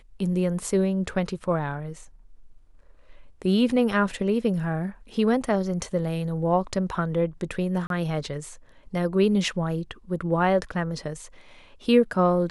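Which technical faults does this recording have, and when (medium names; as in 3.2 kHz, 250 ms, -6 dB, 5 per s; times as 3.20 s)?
7.87–7.90 s: dropout 32 ms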